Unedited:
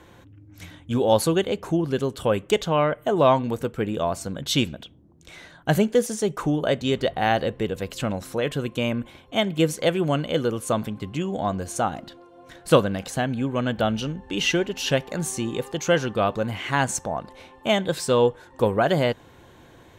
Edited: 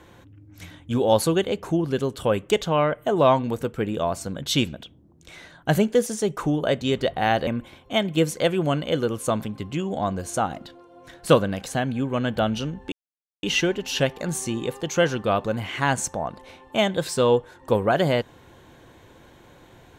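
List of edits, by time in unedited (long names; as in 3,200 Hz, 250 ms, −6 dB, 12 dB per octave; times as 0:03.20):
0:07.47–0:08.89: remove
0:14.34: splice in silence 0.51 s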